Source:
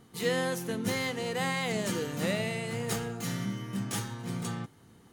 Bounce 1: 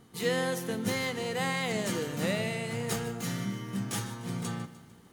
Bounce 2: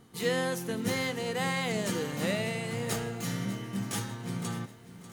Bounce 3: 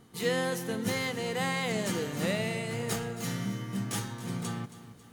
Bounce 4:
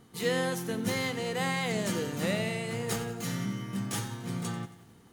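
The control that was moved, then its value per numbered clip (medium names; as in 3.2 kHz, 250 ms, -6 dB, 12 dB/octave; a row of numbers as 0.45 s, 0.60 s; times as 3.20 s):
bit-crushed delay, time: 150 ms, 593 ms, 273 ms, 91 ms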